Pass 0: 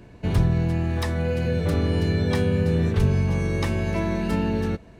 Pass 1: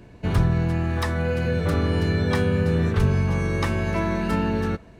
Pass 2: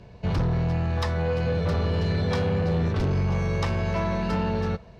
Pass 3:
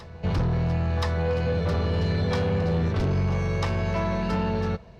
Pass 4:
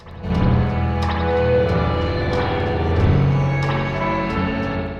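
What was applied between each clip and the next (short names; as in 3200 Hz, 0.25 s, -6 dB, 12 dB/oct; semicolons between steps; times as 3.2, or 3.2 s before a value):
dynamic EQ 1300 Hz, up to +7 dB, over -48 dBFS, Q 1.5
EQ curve 190 Hz 0 dB, 290 Hz -12 dB, 470 Hz +1 dB, 1000 Hz 0 dB, 1600 Hz -5 dB, 5100 Hz +2 dB, 9100 Hz -14 dB; added harmonics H 5 -9 dB, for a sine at -9 dBFS; gain -8 dB
reverse echo 1.024 s -18.5 dB
crackle 17/s -42 dBFS; reverb RT60 1.3 s, pre-delay 58 ms, DRR -8.5 dB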